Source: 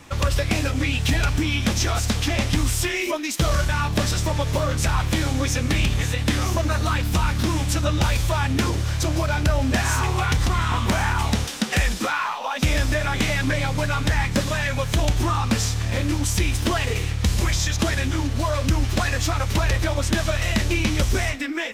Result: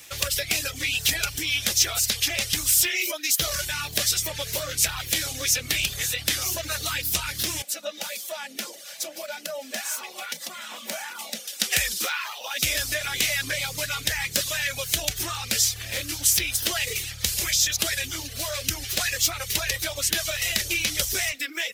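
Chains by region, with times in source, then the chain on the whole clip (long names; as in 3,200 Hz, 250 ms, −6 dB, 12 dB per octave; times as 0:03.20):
0:07.62–0:11.60: Chebyshev high-pass with heavy ripple 160 Hz, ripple 9 dB + comb filter 3.5 ms, depth 34%
whole clip: RIAA equalisation recording; reverb reduction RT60 0.61 s; octave-band graphic EQ 250/1,000/8,000 Hz −10/−12/−4 dB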